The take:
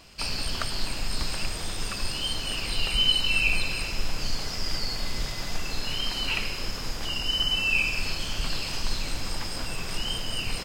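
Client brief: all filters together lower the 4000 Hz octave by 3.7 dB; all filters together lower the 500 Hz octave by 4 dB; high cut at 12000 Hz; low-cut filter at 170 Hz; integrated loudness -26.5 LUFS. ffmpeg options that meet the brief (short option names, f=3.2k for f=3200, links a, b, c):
-af "highpass=170,lowpass=12k,equalizer=f=500:t=o:g=-5,equalizer=f=4k:t=o:g=-5.5,volume=4.5dB"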